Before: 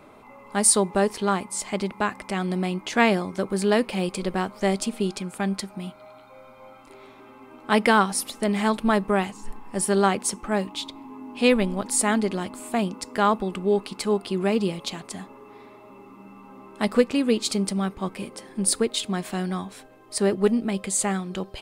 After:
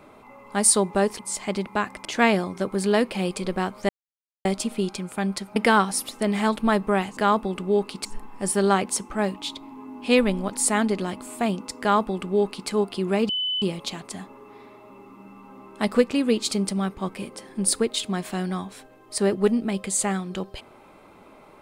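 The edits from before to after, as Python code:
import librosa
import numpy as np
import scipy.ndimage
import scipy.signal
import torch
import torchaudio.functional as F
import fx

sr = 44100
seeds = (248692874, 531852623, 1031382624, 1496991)

y = fx.edit(x, sr, fx.cut(start_s=1.19, length_s=0.25),
    fx.cut(start_s=2.3, length_s=0.53),
    fx.insert_silence(at_s=4.67, length_s=0.56),
    fx.cut(start_s=5.78, length_s=1.99),
    fx.duplicate(start_s=13.14, length_s=0.88, to_s=9.38),
    fx.insert_tone(at_s=14.62, length_s=0.33, hz=3010.0, db=-23.0), tone=tone)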